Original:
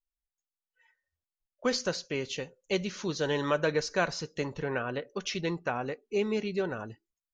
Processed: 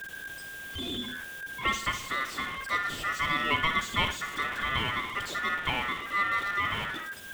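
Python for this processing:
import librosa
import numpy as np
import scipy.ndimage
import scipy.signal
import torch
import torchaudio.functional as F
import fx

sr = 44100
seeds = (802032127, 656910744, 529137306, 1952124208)

y = x + 0.5 * 10.0 ** (-29.0 / 20.0) * np.sign(x)
y = fx.high_shelf_res(y, sr, hz=2300.0, db=-6.0, q=3.0)
y = fx.room_flutter(y, sr, wall_m=10.2, rt60_s=0.34)
y = y * np.sin(2.0 * np.pi * 1600.0 * np.arange(len(y)) / sr)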